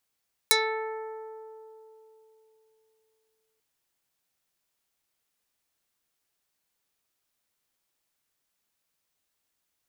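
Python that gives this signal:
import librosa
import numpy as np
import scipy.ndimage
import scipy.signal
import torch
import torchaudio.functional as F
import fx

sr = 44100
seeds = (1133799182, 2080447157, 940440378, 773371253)

y = fx.pluck(sr, length_s=3.09, note=69, decay_s=3.53, pick=0.28, brightness='dark')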